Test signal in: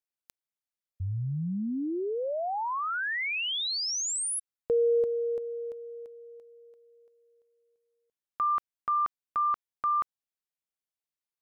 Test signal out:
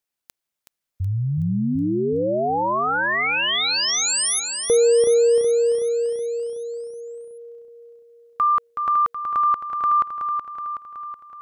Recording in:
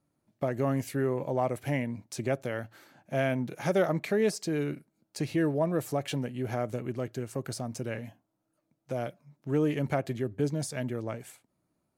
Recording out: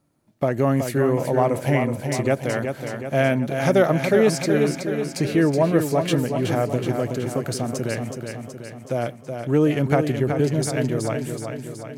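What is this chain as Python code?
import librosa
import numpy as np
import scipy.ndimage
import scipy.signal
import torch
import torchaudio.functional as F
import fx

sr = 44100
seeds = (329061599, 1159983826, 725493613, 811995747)

y = fx.echo_feedback(x, sr, ms=373, feedback_pct=58, wet_db=-6.5)
y = y * librosa.db_to_amplitude(8.5)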